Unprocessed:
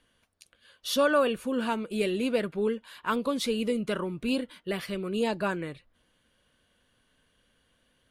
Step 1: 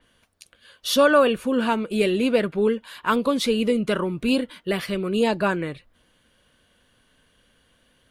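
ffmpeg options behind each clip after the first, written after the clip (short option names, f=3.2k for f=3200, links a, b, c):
-af "adynamicequalizer=threshold=0.00398:dfrequency=4700:dqfactor=0.7:tfrequency=4700:tqfactor=0.7:attack=5:release=100:ratio=0.375:range=2.5:mode=cutabove:tftype=highshelf,volume=7dB"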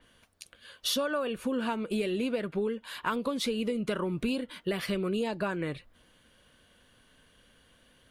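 -af "acompressor=threshold=-27dB:ratio=12"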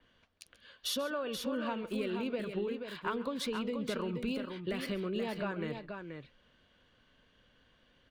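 -filter_complex "[0:a]acrossover=split=120|1700|5900[a][b][c][d];[d]aeval=exprs='val(0)*gte(abs(val(0)),0.00447)':c=same[e];[a][b][c][e]amix=inputs=4:normalize=0,aecho=1:1:137|480:0.141|0.473,volume=-5.5dB"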